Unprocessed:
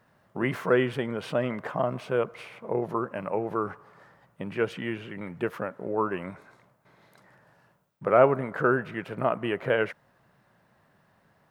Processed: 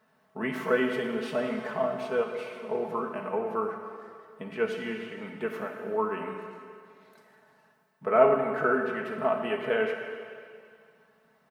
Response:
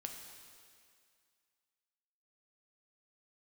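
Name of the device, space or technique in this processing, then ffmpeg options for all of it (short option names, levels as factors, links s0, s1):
stairwell: -filter_complex "[1:a]atrim=start_sample=2205[s0];[0:a][s0]afir=irnorm=-1:irlink=0,highpass=f=210:p=1,aecho=1:1:4.6:0.71"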